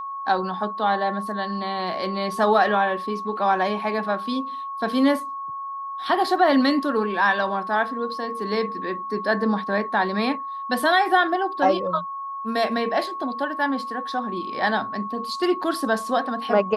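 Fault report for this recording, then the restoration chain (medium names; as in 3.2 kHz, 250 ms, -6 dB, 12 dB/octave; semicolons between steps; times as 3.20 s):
whine 1.1 kHz -29 dBFS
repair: band-stop 1.1 kHz, Q 30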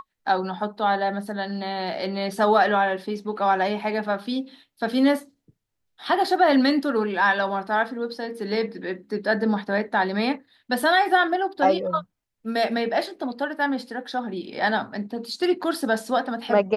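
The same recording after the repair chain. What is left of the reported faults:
nothing left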